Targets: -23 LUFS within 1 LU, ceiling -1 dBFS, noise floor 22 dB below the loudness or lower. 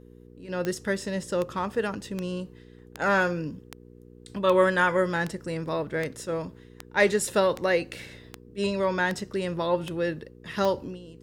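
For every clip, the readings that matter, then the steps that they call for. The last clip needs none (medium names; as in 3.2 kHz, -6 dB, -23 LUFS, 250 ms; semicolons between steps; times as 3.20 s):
clicks found 14; hum 60 Hz; highest harmonic 480 Hz; hum level -48 dBFS; loudness -27.0 LUFS; peak level -8.0 dBFS; loudness target -23.0 LUFS
-> de-click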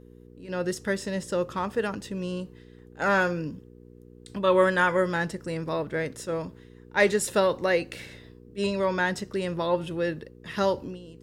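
clicks found 0; hum 60 Hz; highest harmonic 480 Hz; hum level -48 dBFS
-> de-hum 60 Hz, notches 8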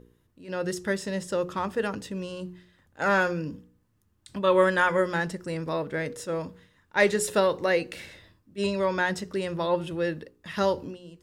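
hum not found; loudness -27.0 LUFS; peak level -7.5 dBFS; loudness target -23.0 LUFS
-> trim +4 dB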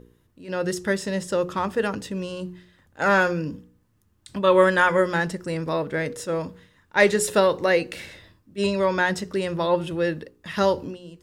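loudness -23.0 LUFS; peak level -3.5 dBFS; noise floor -64 dBFS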